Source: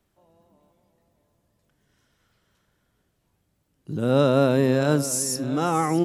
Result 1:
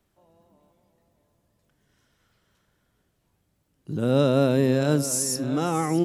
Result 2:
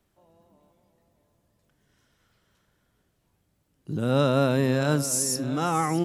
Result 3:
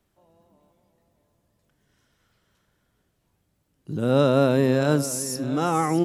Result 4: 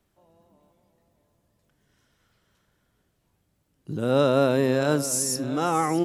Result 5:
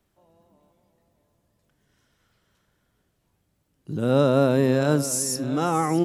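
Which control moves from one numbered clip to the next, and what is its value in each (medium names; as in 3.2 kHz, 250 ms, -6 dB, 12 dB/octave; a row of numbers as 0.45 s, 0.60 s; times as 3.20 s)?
dynamic bell, frequency: 1.1 kHz, 410 Hz, 7.6 kHz, 160 Hz, 2.9 kHz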